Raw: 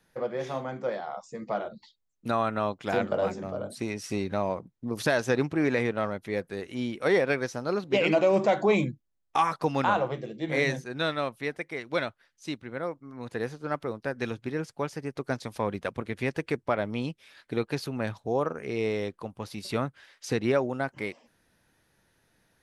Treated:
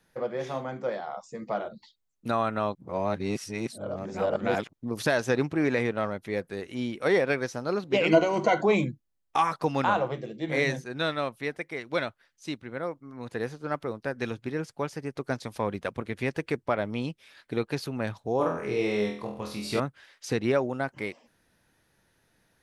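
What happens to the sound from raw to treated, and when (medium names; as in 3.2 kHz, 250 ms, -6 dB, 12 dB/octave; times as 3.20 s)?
2.75–4.73 s: reverse
8.11–8.61 s: rippled EQ curve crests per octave 1.9, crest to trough 15 dB
18.37–19.80 s: flutter echo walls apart 4.1 m, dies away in 0.5 s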